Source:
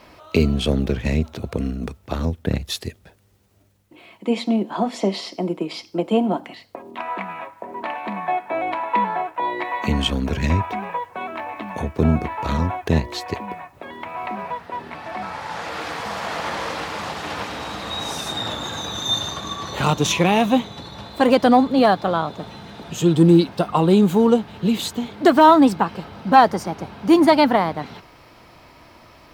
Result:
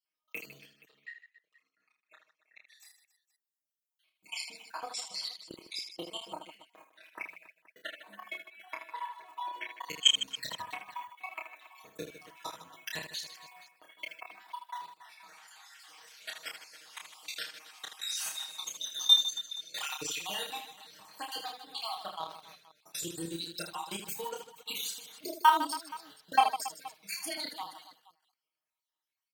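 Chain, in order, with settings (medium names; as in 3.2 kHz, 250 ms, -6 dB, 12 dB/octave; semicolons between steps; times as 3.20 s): random holes in the spectrogram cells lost 56%; gate -40 dBFS, range -21 dB; differentiator; comb 6.4 ms, depth 100%; transient shaper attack +8 dB, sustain 0 dB; level held to a coarse grid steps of 19 dB; 0.58–2.80 s: band-pass filter 1.8 kHz, Q 8.5; reverse bouncing-ball echo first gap 30 ms, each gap 1.6×, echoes 5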